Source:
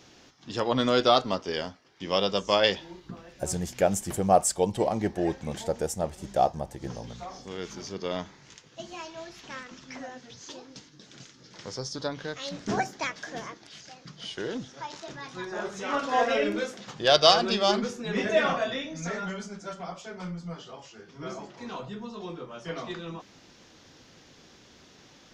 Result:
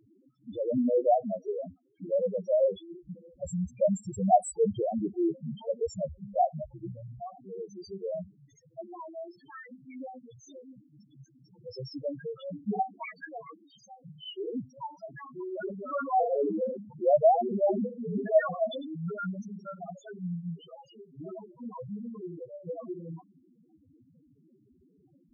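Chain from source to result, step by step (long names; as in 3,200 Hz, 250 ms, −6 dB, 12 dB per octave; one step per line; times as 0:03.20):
spectral peaks only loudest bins 2
0:15.23–0:16.95: level that may fall only so fast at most 89 dB per second
level +3 dB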